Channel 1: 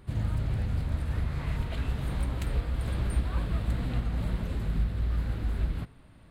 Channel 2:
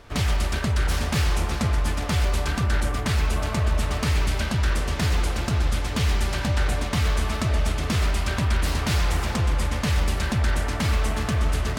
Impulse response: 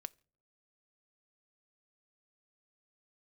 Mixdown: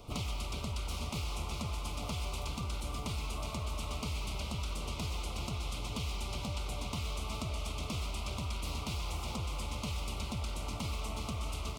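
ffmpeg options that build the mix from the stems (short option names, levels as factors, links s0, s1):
-filter_complex "[0:a]highshelf=f=8100:g=12,aeval=exprs='0.0447*(abs(mod(val(0)/0.0447+3,4)-2)-1)':c=same,volume=0.422[s0];[1:a]volume=0.75,asplit=2[s1][s2];[s2]volume=0.266,aecho=0:1:386|772|1158|1544|1930|2316|2702|3088|3474:1|0.57|0.325|0.185|0.106|0.0602|0.0343|0.0195|0.0111[s3];[s0][s1][s3]amix=inputs=3:normalize=0,acrossover=split=1000|3700[s4][s5][s6];[s4]acompressor=threshold=0.0126:ratio=4[s7];[s5]acompressor=threshold=0.00794:ratio=4[s8];[s6]acompressor=threshold=0.00355:ratio=4[s9];[s7][s8][s9]amix=inputs=3:normalize=0,asuperstop=centerf=1700:order=4:qfactor=1.5"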